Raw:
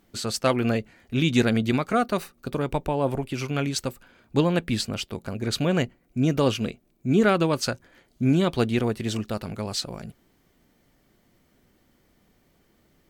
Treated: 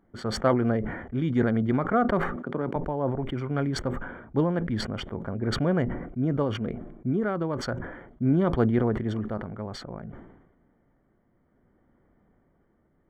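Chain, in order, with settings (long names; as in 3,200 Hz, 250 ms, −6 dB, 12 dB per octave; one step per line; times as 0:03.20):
adaptive Wiener filter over 9 samples
0:02.36–0:02.76: high-pass filter 150 Hz 24 dB per octave
0:06.42–0:07.69: downward compressor 5 to 1, threshold −23 dBFS, peak gain reduction 8 dB
shaped tremolo triangle 0.6 Hz, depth 40%
Savitzky-Golay smoothing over 41 samples
level that may fall only so fast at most 58 dB per second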